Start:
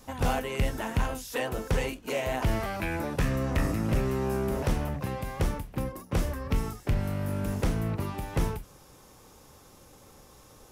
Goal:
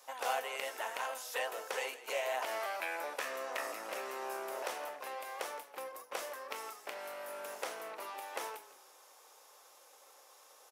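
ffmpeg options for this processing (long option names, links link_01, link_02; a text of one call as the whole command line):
ffmpeg -i in.wav -filter_complex "[0:a]highpass=frequency=540:width=0.5412,highpass=frequency=540:width=1.3066,asplit=4[link_01][link_02][link_03][link_04];[link_02]adelay=167,afreqshift=-31,volume=-16dB[link_05];[link_03]adelay=334,afreqshift=-62,volume=-25.9dB[link_06];[link_04]adelay=501,afreqshift=-93,volume=-35.8dB[link_07];[link_01][link_05][link_06][link_07]amix=inputs=4:normalize=0,volume=-3.5dB" out.wav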